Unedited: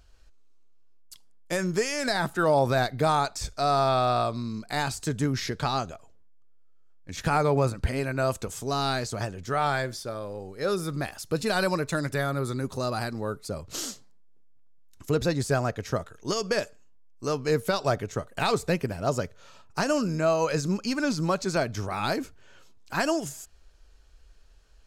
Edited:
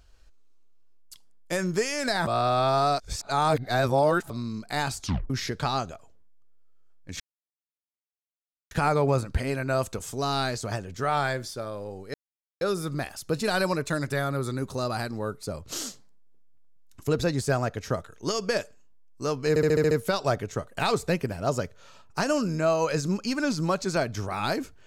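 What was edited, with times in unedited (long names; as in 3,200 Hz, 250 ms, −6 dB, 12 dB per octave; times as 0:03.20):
0:02.27–0:04.30: reverse
0:04.98: tape stop 0.32 s
0:07.20: splice in silence 1.51 s
0:10.63: splice in silence 0.47 s
0:17.51: stutter 0.07 s, 7 plays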